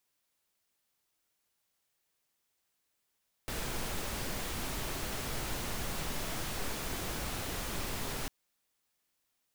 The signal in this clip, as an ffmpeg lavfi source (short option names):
-f lavfi -i "anoisesrc=c=pink:a=0.0767:d=4.8:r=44100:seed=1"